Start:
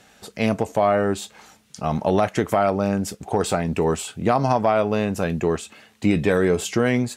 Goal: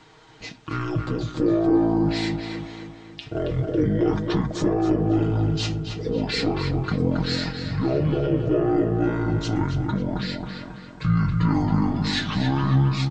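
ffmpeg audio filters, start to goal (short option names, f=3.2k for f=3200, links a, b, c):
-filter_complex "[0:a]asetrate=24123,aresample=44100,alimiter=limit=-14.5dB:level=0:latency=1:release=17,aecho=1:1:6.4:0.71,bandreject=f=60.31:t=h:w=4,bandreject=f=120.62:t=h:w=4,bandreject=f=180.93:t=h:w=4,bandreject=f=241.24:t=h:w=4,asplit=2[a][b];[b]adelay=273,lowpass=f=3.2k:p=1,volume=-5dB,asplit=2[c][d];[d]adelay=273,lowpass=f=3.2k:p=1,volume=0.5,asplit=2[e][f];[f]adelay=273,lowpass=f=3.2k:p=1,volume=0.5,asplit=2[g][h];[h]adelay=273,lowpass=f=3.2k:p=1,volume=0.5,asplit=2[i][j];[j]adelay=273,lowpass=f=3.2k:p=1,volume=0.5,asplit=2[k][l];[l]adelay=273,lowpass=f=3.2k:p=1,volume=0.5[m];[c][e][g][i][k][m]amix=inputs=6:normalize=0[n];[a][n]amix=inputs=2:normalize=0"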